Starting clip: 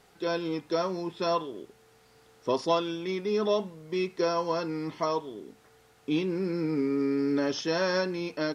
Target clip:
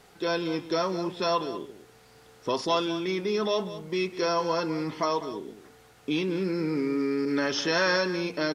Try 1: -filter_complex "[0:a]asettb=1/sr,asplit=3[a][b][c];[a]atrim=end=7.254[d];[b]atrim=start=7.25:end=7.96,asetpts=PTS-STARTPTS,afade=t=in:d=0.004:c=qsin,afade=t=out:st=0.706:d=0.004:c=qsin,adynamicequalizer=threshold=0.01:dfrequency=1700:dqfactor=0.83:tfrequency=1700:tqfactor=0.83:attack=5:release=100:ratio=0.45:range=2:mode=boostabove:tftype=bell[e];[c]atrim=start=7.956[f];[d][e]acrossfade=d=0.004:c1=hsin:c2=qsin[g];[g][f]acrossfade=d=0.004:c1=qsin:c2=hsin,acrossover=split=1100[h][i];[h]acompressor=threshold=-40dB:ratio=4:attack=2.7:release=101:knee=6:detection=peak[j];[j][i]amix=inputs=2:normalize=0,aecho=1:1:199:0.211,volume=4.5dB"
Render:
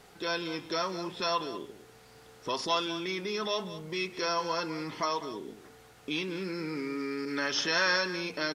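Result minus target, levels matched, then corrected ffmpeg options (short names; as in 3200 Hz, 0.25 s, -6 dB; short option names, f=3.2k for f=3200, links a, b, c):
compressor: peak gain reduction +8 dB
-filter_complex "[0:a]asettb=1/sr,asplit=3[a][b][c];[a]atrim=end=7.254[d];[b]atrim=start=7.25:end=7.96,asetpts=PTS-STARTPTS,afade=t=in:d=0.004:c=qsin,afade=t=out:st=0.706:d=0.004:c=qsin,adynamicequalizer=threshold=0.01:dfrequency=1700:dqfactor=0.83:tfrequency=1700:tqfactor=0.83:attack=5:release=100:ratio=0.45:range=2:mode=boostabove:tftype=bell[e];[c]atrim=start=7.956[f];[d][e]acrossfade=d=0.004:c1=hsin:c2=qsin[g];[g][f]acrossfade=d=0.004:c1=qsin:c2=hsin,acrossover=split=1100[h][i];[h]acompressor=threshold=-29dB:ratio=4:attack=2.7:release=101:knee=6:detection=peak[j];[j][i]amix=inputs=2:normalize=0,aecho=1:1:199:0.211,volume=4.5dB"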